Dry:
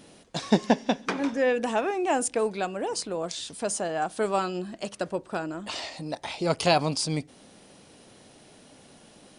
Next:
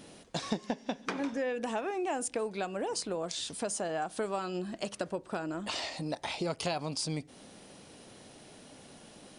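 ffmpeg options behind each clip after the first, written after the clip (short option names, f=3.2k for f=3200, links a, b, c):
-af "acompressor=threshold=-31dB:ratio=5"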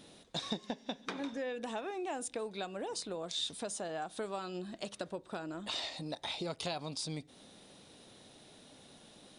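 -af "equalizer=f=3.7k:w=6.8:g=11.5,volume=-5.5dB"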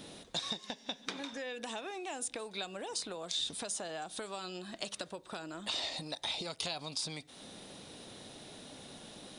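-filter_complex "[0:a]acrossover=split=720|2700[a][b][c];[a]acompressor=threshold=-53dB:ratio=4[d];[b]acompressor=threshold=-53dB:ratio=4[e];[c]acompressor=threshold=-42dB:ratio=4[f];[d][e][f]amix=inputs=3:normalize=0,volume=7dB"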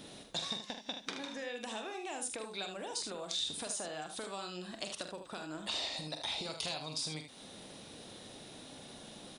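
-af "aecho=1:1:45|77:0.376|0.398,volume=-1.5dB"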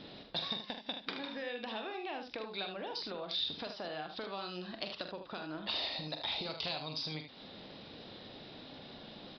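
-af "aresample=11025,aresample=44100,volume=1dB"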